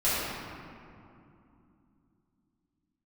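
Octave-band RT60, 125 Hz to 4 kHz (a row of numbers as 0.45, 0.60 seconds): 3.8, 4.2, 2.8, 2.6, 2.0, 1.3 seconds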